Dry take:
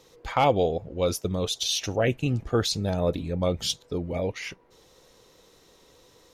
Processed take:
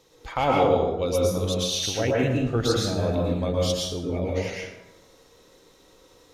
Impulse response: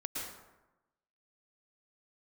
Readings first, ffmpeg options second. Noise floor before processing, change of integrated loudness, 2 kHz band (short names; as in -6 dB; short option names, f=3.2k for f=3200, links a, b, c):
-58 dBFS, +2.0 dB, +1.5 dB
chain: -filter_complex "[1:a]atrim=start_sample=2205[a];[0:a][a]afir=irnorm=-1:irlink=0"